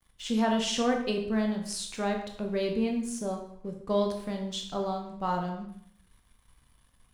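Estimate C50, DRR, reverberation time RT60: 6.0 dB, 2.5 dB, 0.65 s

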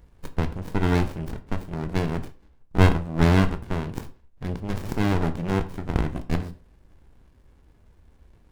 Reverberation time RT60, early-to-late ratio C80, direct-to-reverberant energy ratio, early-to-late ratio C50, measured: not exponential, 19.0 dB, 9.0 dB, 15.0 dB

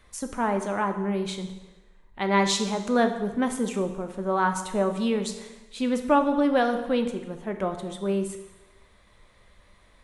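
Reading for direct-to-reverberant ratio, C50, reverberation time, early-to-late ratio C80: 6.5 dB, 9.0 dB, 1.1 s, 11.5 dB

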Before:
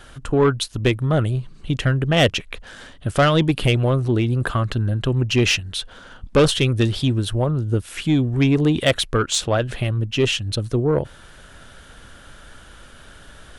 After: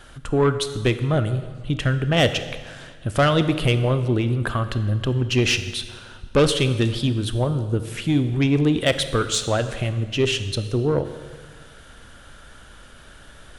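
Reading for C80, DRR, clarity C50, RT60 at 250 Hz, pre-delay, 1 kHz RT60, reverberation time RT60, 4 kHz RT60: 12.5 dB, 10.0 dB, 11.0 dB, 1.7 s, 23 ms, 1.5 s, 1.5 s, 1.4 s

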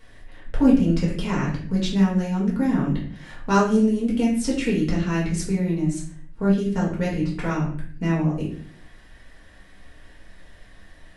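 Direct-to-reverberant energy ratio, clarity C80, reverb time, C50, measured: -6.0 dB, 9.5 dB, 0.55 s, 5.5 dB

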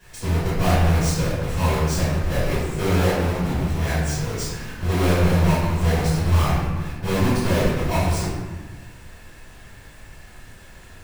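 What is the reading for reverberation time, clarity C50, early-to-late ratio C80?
1.3 s, -2.0 dB, 1.5 dB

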